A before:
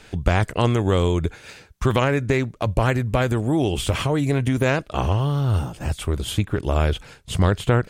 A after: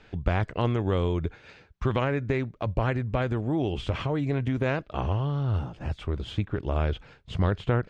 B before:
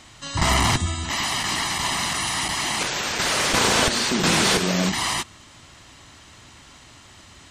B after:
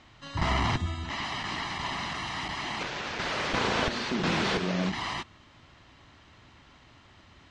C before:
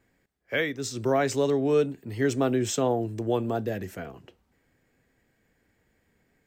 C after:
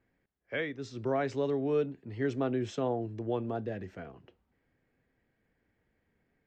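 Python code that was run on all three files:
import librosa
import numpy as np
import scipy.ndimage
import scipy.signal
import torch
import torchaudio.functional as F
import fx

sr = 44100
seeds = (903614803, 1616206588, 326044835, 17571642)

y = fx.air_absorb(x, sr, metres=190.0)
y = y * librosa.db_to_amplitude(-6.0)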